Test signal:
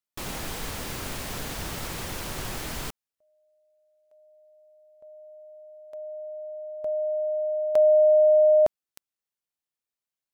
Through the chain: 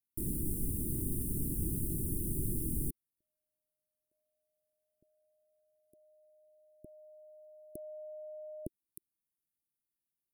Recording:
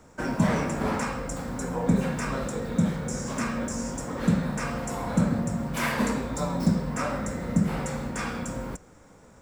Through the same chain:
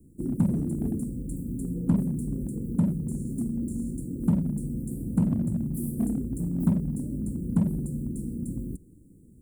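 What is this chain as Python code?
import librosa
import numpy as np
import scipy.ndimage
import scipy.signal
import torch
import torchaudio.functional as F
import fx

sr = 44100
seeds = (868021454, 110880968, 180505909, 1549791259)

p1 = scipy.signal.sosfilt(scipy.signal.cheby1(4, 1.0, [350.0, 9300.0], 'bandstop', fs=sr, output='sos'), x)
p2 = 10.0 ** (-25.5 / 20.0) * (np.abs((p1 / 10.0 ** (-25.5 / 20.0) + 3.0) % 4.0 - 2.0) - 1.0)
y = p1 + F.gain(torch.from_numpy(p2), -10.0).numpy()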